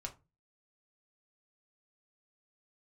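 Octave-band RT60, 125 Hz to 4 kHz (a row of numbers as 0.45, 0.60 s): 0.50, 0.40, 0.30, 0.25, 0.20, 0.15 s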